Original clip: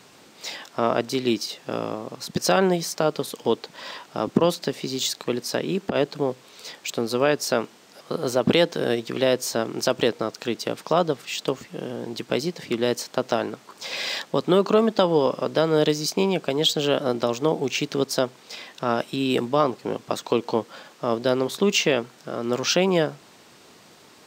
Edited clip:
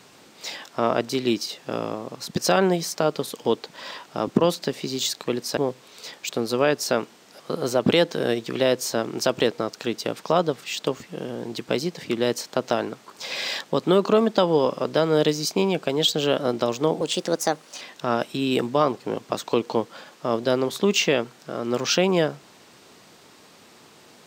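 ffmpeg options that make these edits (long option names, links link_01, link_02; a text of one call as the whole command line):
ffmpeg -i in.wav -filter_complex "[0:a]asplit=4[link_01][link_02][link_03][link_04];[link_01]atrim=end=5.572[link_05];[link_02]atrim=start=6.178:end=17.624[link_06];[link_03]atrim=start=17.62:end=18.6,asetpts=PTS-STARTPTS,asetrate=53802,aresample=44100[link_07];[link_04]atrim=start=18.596[link_08];[link_05][link_06]acrossfade=duration=0.004:curve1=hsin:curve2=hsin[link_09];[link_09][link_07]acrossfade=duration=0.004:curve1=hsin:curve2=hsin[link_10];[link_10][link_08]acrossfade=duration=0.004:curve1=hsin:curve2=hsin" out.wav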